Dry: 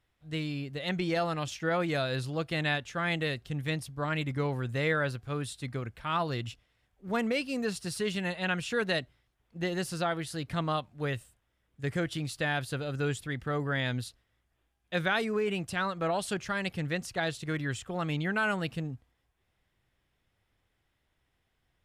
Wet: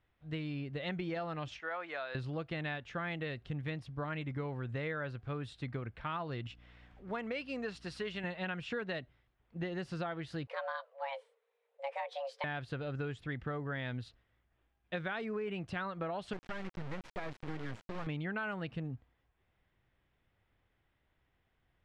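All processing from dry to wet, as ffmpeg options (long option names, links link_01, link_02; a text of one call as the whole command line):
ffmpeg -i in.wav -filter_complex "[0:a]asettb=1/sr,asplit=3[link_01][link_02][link_03];[link_01]atrim=end=1.604[link_04];[link_02]atrim=start=1.6:end=2.15,asetpts=PTS-STARTPTS,afade=type=in:duration=0.004:curve=qsin,afade=type=out:start_time=0.546:duration=0.004:curve=qsin,highpass=890,highshelf=frequency=2400:gain=-10.5[link_05];[link_03]atrim=start=2.146[link_06];[link_04][link_05]acrossfade=duration=0.004:curve1=hsin:curve2=qsin[link_07];[link_07][link_06]acrossfade=duration=0.004:curve1=qsin:curve2=hsin,asettb=1/sr,asplit=3[link_08][link_09][link_10];[link_08]atrim=end=6.474[link_11];[link_09]atrim=start=6.47:end=8.24,asetpts=PTS-STARTPTS,afade=type=in:duration=0.004:curve=qsin,afade=type=out:start_time=1.766:duration=0.004:curve=qsin,equalizer=frequency=110:width=0.36:gain=-9,acompressor=mode=upward:threshold=-46dB:ratio=2.5:attack=3.2:release=140:knee=2.83:detection=peak,aeval=exprs='val(0)+0.001*(sin(2*PI*60*n/s)+sin(2*PI*2*60*n/s)/2+sin(2*PI*3*60*n/s)/3+sin(2*PI*4*60*n/s)/4+sin(2*PI*5*60*n/s)/5)':channel_layout=same[link_12];[link_10]atrim=start=8.236[link_13];[link_11][link_12]acrossfade=duration=0.004:curve1=hsin:curve2=qsin[link_14];[link_14][link_13]acrossfade=duration=0.004:curve1=qsin:curve2=hsin,asettb=1/sr,asplit=3[link_15][link_16][link_17];[link_15]atrim=end=10.474[link_18];[link_16]atrim=start=10.47:end=12.44,asetpts=PTS-STARTPTS,afade=type=in:duration=0.004:curve=qsin,afade=type=out:start_time=1.966:duration=0.004:curve=qsin,flanger=delay=1.4:depth=5.6:regen=-50:speed=1.9:shape=triangular,afreqshift=410[link_19];[link_17]atrim=start=12.436[link_20];[link_18][link_19]acrossfade=duration=0.004:curve1=hsin:curve2=qsin[link_21];[link_21][link_20]acrossfade=duration=0.004:curve1=qsin:curve2=hsin,asettb=1/sr,asplit=3[link_22][link_23][link_24];[link_22]atrim=end=16.334[link_25];[link_23]atrim=start=16.33:end=18.07,asetpts=PTS-STARTPTS,afade=type=in:duration=0.004:curve=qsin,afade=type=out:start_time=1.736:duration=0.004:curve=qsin,equalizer=frequency=3100:width=1.1:gain=-12.5,acrusher=bits=4:dc=4:mix=0:aa=0.000001[link_26];[link_24]atrim=start=18.066[link_27];[link_25][link_26]acrossfade=duration=0.004:curve1=hsin:curve2=qsin[link_28];[link_28][link_27]acrossfade=duration=0.004:curve1=qsin:curve2=hsin,lowpass=2900,acompressor=threshold=-35dB:ratio=6" out.wav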